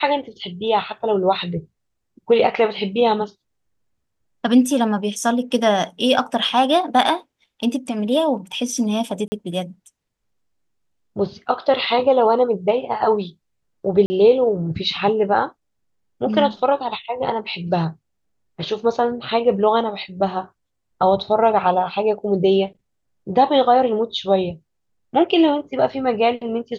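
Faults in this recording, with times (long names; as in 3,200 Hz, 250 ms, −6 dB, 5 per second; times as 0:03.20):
0:09.28–0:09.32: drop-out 40 ms
0:14.06–0:14.10: drop-out 40 ms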